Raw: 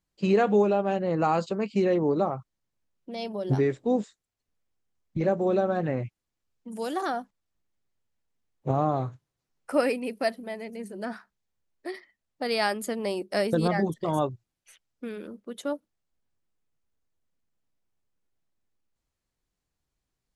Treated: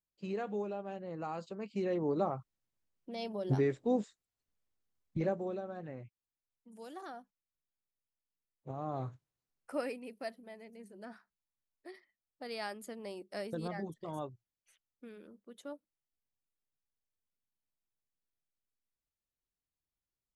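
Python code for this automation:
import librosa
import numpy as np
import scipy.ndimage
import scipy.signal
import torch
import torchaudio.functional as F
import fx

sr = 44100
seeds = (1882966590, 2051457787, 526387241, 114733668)

y = fx.gain(x, sr, db=fx.line((1.36, -16.0), (2.3, -6.0), (5.19, -6.0), (5.61, -17.0), (8.77, -17.0), (9.08, -7.0), (10.03, -14.5)))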